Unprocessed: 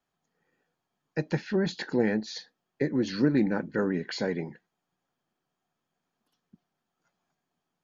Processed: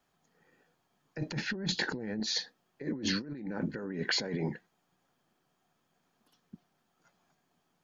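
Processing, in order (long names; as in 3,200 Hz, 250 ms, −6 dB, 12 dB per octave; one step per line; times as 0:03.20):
compressor whose output falls as the input rises −36 dBFS, ratio −1
0:01.18–0:02.20: low-shelf EQ 170 Hz +8.5 dB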